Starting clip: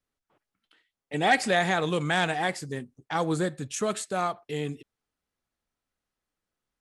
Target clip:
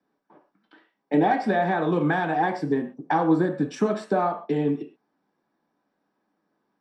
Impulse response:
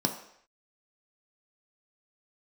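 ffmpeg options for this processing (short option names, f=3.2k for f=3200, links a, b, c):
-filter_complex "[0:a]acompressor=threshold=-35dB:ratio=6,acrossover=split=230 2900:gain=0.141 1 0.0891[a][b][c];[a][b][c]amix=inputs=3:normalize=0[d];[1:a]atrim=start_sample=2205,atrim=end_sample=6174[e];[d][e]afir=irnorm=-1:irlink=0,volume=5.5dB"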